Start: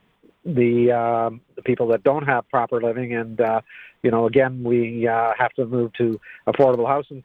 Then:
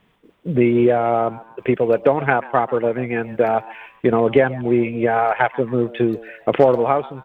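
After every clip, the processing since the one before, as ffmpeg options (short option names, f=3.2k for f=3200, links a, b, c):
-filter_complex "[0:a]asplit=4[a][b][c][d];[b]adelay=137,afreqshift=110,volume=-19.5dB[e];[c]adelay=274,afreqshift=220,volume=-27.5dB[f];[d]adelay=411,afreqshift=330,volume=-35.4dB[g];[a][e][f][g]amix=inputs=4:normalize=0,volume=2dB"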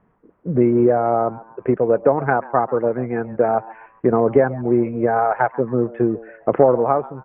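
-af "lowpass=f=1.5k:w=0.5412,lowpass=f=1.5k:w=1.3066"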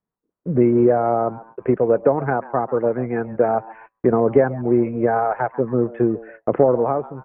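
-filter_complex "[0:a]agate=range=-26dB:threshold=-41dB:ratio=16:detection=peak,acrossover=split=550[a][b];[b]alimiter=limit=-14dB:level=0:latency=1:release=295[c];[a][c]amix=inputs=2:normalize=0"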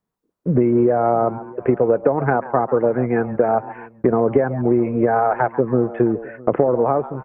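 -af "acompressor=threshold=-17dB:ratio=6,aecho=1:1:659:0.0794,volume=5dB"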